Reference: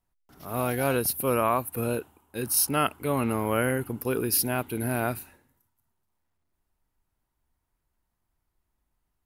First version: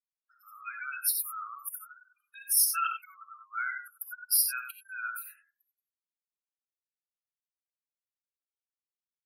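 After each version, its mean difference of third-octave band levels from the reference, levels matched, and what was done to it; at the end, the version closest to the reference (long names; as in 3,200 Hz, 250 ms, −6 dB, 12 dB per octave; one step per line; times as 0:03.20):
25.0 dB: gate on every frequency bin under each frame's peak −15 dB strong
Butterworth high-pass 1,300 Hz 96 dB per octave
reverb whose tail is shaped and stops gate 110 ms rising, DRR 5 dB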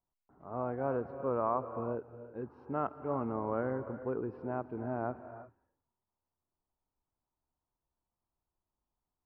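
12.5 dB: low-pass filter 1,100 Hz 24 dB per octave
spectral tilt +2 dB per octave
reverb whose tail is shaped and stops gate 380 ms rising, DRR 11 dB
level −5 dB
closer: second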